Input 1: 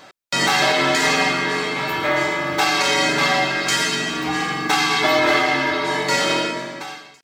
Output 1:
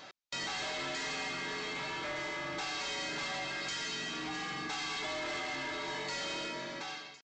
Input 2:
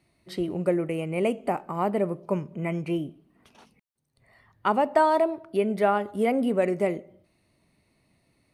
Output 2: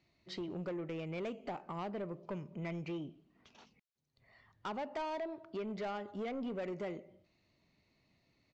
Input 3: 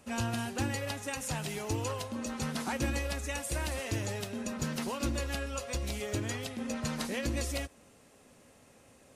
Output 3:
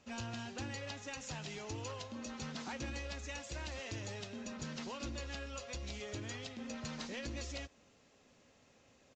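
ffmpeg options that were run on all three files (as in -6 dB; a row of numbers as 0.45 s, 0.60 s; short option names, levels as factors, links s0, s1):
-af "equalizer=f=3800:t=o:w=1.7:g=4.5,acompressor=threshold=0.0355:ratio=2,aresample=16000,asoftclip=type=tanh:threshold=0.0447,aresample=44100,volume=0.422"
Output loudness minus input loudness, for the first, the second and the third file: -18.5 LU, -15.5 LU, -8.5 LU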